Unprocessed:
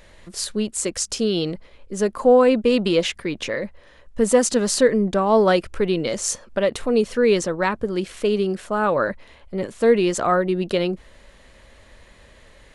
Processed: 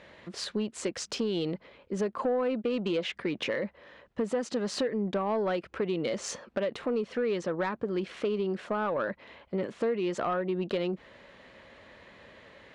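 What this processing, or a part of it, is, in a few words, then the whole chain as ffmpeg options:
AM radio: -af "highpass=140,lowpass=3400,acompressor=threshold=0.0501:ratio=5,asoftclip=type=tanh:threshold=0.0944"

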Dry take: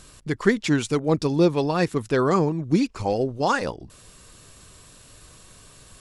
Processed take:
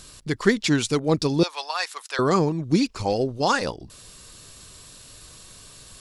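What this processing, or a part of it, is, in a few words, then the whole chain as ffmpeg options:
presence and air boost: -filter_complex "[0:a]asettb=1/sr,asplit=3[s0][s1][s2];[s0]atrim=end=1.434[s3];[s1]atrim=start=1.43:end=2.19,asetpts=PTS-STARTPTS,afade=t=in:d=0.004:c=qsin,afade=t=out:st=0.756:d=0.004:c=qsin,highpass=f=800:w=0.5412,highpass=f=800:w=1.3066[s4];[s2]atrim=start=2.186[s5];[s3][s4]acrossfade=d=0.004:c1=hsin:c2=qsin[s6];[s6][s5]acrossfade=d=0.004:c1=qsin:c2=hsin,equalizer=f=4400:t=o:w=1.1:g=6,highshelf=f=10000:g=7"

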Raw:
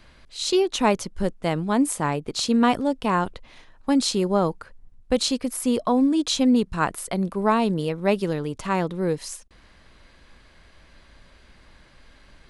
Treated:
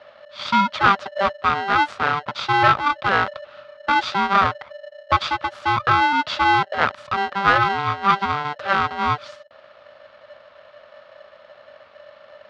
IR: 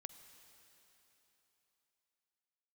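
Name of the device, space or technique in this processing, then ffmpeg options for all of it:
ring modulator pedal into a guitar cabinet: -af "aeval=exprs='val(0)*sgn(sin(2*PI*590*n/s))':c=same,highpass=100,equalizer=f=120:t=q:w=4:g=3,equalizer=f=310:t=q:w=4:g=-9,equalizer=f=590:t=q:w=4:g=6,equalizer=f=1300:t=q:w=4:g=10,lowpass=f=3800:w=0.5412,lowpass=f=3800:w=1.3066,equalizer=f=160:t=o:w=0.67:g=-5,equalizer=f=400:t=o:w=0.67:g=-6,equalizer=f=2500:t=o:w=0.67:g=-3,volume=1.33"

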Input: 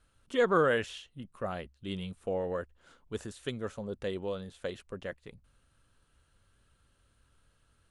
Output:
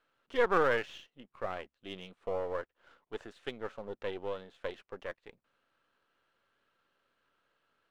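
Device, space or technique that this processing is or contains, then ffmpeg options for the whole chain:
crystal radio: -af "highpass=380,lowpass=2900,aeval=exprs='if(lt(val(0),0),0.447*val(0),val(0))':c=same,volume=1.26"

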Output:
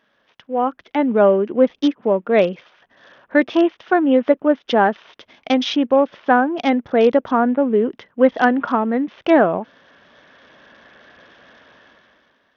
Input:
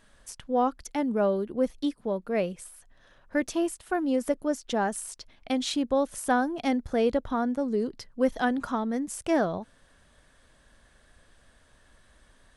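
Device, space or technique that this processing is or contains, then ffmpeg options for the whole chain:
Bluetooth headset: -af "highpass=230,dynaudnorm=f=170:g=9:m=6.31,aresample=8000,aresample=44100" -ar 48000 -c:a sbc -b:a 64k

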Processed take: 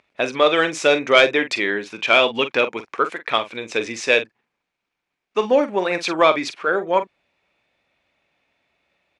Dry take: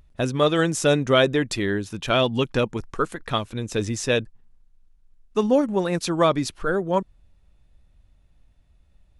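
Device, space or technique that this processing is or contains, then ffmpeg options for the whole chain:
intercom: -filter_complex "[0:a]highpass=440,lowpass=4600,equalizer=f=2300:t=o:w=0.33:g=10.5,asoftclip=type=tanh:threshold=0.501,asplit=2[s0][s1];[s1]adelay=44,volume=0.282[s2];[s0][s2]amix=inputs=2:normalize=0,volume=1.88"

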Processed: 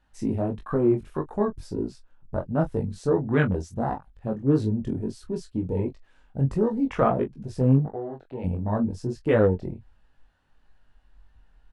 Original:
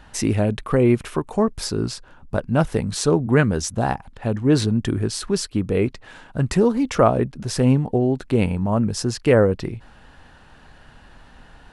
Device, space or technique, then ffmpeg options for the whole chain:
double-tracked vocal: -filter_complex "[0:a]afwtdn=0.0398,asettb=1/sr,asplit=3[s0][s1][s2];[s0]atrim=end=7.914[s3];[s1]atrim=start=7.91:end=8.44,asetpts=PTS-STARTPTS,afade=t=in:d=0.004:c=qsin,afade=t=out:st=0.526:d=0.004:c=qsin,acrossover=split=560 4300:gain=0.2 1 0.0891[s4][s5][s6];[s4][s5][s6]amix=inputs=3:normalize=0[s7];[s2]atrim=start=8.436[s8];[s3][s7]acrossfade=d=0.004:c1=hsin:c2=qsin[s9];[s9][s8]acrossfade=d=0.004:c1=qsin:c2=hsin,asplit=2[s10][s11];[s11]adelay=22,volume=0.335[s12];[s10][s12]amix=inputs=2:normalize=0,flanger=delay=18.5:depth=5:speed=1.5,volume=0.75"

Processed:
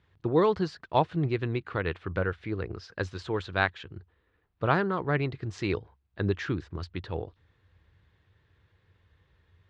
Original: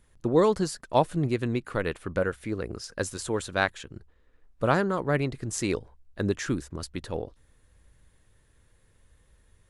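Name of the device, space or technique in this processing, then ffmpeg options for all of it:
guitar cabinet: -af "highpass=85,equalizer=f=88:t=q:w=4:g=9,equalizer=f=240:t=q:w=4:g=-8,equalizer=f=560:t=q:w=4:g=-6,lowpass=f=4100:w=0.5412,lowpass=f=4100:w=1.3066"

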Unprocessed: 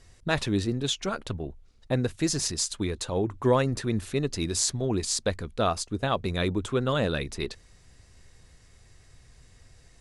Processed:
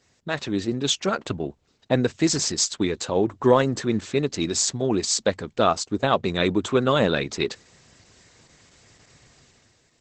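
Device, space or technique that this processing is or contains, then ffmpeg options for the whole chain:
video call: -filter_complex "[0:a]asplit=3[s0][s1][s2];[s0]afade=t=out:st=3.29:d=0.02[s3];[s1]bandreject=f=2400:w=8.9,afade=t=in:st=3.29:d=0.02,afade=t=out:st=3.81:d=0.02[s4];[s2]afade=t=in:st=3.81:d=0.02[s5];[s3][s4][s5]amix=inputs=3:normalize=0,highpass=160,dynaudnorm=f=130:g=9:m=3.16,volume=0.841" -ar 48000 -c:a libopus -b:a 12k

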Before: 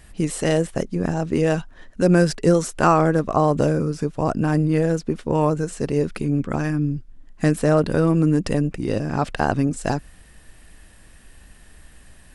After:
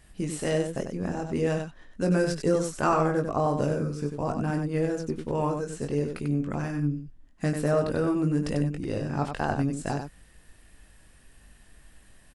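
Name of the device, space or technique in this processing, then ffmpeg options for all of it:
slapback doubling: -filter_complex "[0:a]asplit=3[s0][s1][s2];[s1]adelay=21,volume=0.501[s3];[s2]adelay=95,volume=0.501[s4];[s0][s3][s4]amix=inputs=3:normalize=0,volume=0.376"

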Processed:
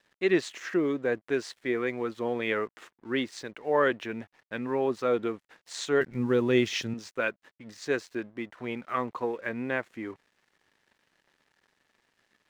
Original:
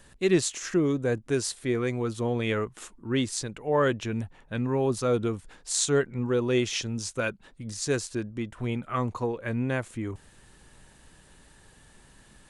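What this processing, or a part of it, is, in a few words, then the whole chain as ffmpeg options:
pocket radio on a weak battery: -filter_complex "[0:a]highpass=280,lowpass=3400,aeval=exprs='sgn(val(0))*max(abs(val(0))-0.00126,0)':c=same,equalizer=f=1900:t=o:w=0.49:g=5,asettb=1/sr,asplit=3[s0][s1][s2];[s0]atrim=end=6.014[s3];[s1]atrim=start=6.01:end=6.94,asetpts=PTS-STARTPTS,afade=t=in:d=0.004:c=qsin,afade=t=out:st=0.926:d=0.004:c=qsin,bass=f=250:g=13,treble=f=4000:g=7[s4];[s2]atrim=start=6.936[s5];[s3][s4]acrossfade=d=0.004:c1=hsin:c2=qsin[s6];[s6][s5]acrossfade=d=0.004:c1=qsin:c2=hsin"

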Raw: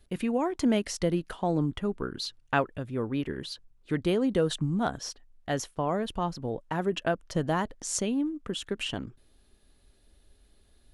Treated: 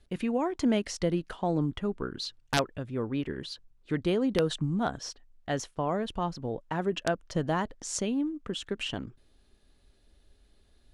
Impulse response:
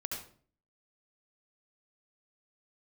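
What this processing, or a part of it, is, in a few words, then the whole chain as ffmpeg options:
overflowing digital effects unit: -af "aeval=exprs='(mod(5.01*val(0)+1,2)-1)/5.01':c=same,lowpass=8100,volume=0.891"

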